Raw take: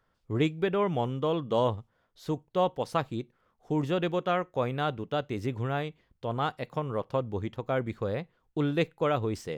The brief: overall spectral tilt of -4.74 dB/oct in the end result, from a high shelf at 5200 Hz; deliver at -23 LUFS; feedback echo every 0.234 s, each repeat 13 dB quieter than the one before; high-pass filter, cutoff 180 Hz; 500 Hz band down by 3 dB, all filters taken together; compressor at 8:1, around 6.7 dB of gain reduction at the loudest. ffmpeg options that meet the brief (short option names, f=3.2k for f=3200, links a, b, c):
-af "highpass=180,equalizer=f=500:t=o:g=-3.5,highshelf=f=5.2k:g=3,acompressor=threshold=-30dB:ratio=8,aecho=1:1:234|468|702:0.224|0.0493|0.0108,volume=14dB"